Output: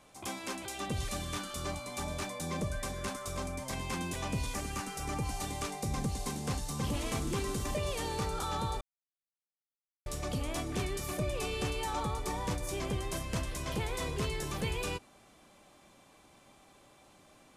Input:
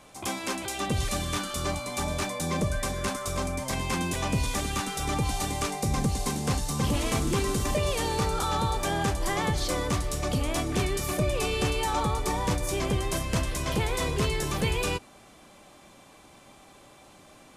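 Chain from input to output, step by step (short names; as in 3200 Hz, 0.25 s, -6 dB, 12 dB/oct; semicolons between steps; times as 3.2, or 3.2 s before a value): 4.53–5.41 bell 3600 Hz -9 dB 0.27 oct; 8.81–10.06 mute; gain -7.5 dB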